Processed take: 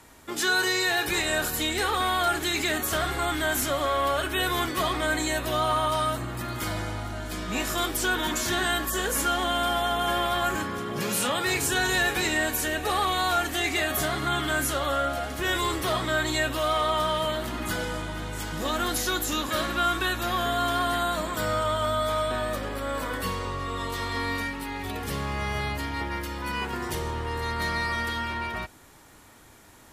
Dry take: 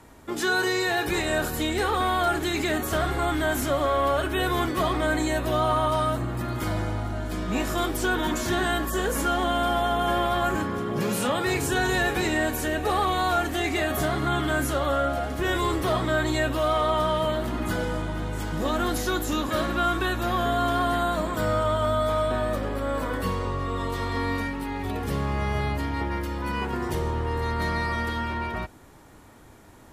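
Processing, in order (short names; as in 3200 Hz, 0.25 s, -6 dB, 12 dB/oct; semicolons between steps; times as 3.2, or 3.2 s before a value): tilt shelf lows -5 dB, about 1300 Hz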